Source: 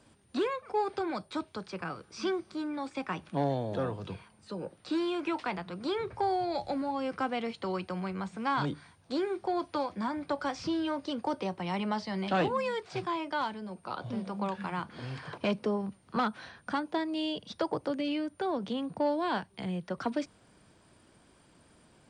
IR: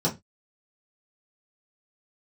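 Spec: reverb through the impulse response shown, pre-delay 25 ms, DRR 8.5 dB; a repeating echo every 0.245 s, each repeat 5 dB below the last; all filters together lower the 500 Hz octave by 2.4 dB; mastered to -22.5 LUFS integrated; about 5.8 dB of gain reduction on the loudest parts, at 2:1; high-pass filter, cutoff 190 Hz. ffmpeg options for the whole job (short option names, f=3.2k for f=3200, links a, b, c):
-filter_complex "[0:a]highpass=190,equalizer=f=500:t=o:g=-3,acompressor=threshold=-37dB:ratio=2,aecho=1:1:245|490|735|980|1225|1470|1715:0.562|0.315|0.176|0.0988|0.0553|0.031|0.0173,asplit=2[a][b];[1:a]atrim=start_sample=2205,adelay=25[c];[b][c]afir=irnorm=-1:irlink=0,volume=-19dB[d];[a][d]amix=inputs=2:normalize=0,volume=13.5dB"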